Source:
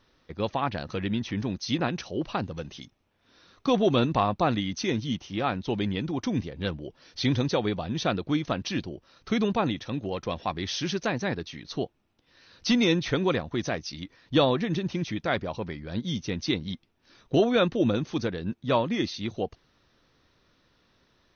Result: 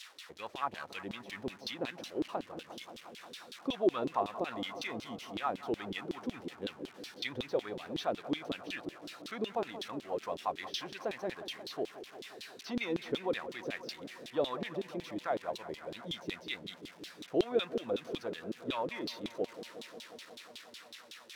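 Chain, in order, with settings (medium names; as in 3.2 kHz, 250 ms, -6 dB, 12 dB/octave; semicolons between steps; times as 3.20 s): zero-crossing glitches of -27.5 dBFS; in parallel at 0 dB: peak limiter -20 dBFS, peak gain reduction 9.5 dB; on the sum: feedback echo behind a low-pass 177 ms, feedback 83%, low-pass 2.3 kHz, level -14.5 dB; LFO band-pass saw down 5.4 Hz 310–3900 Hz; trim -6 dB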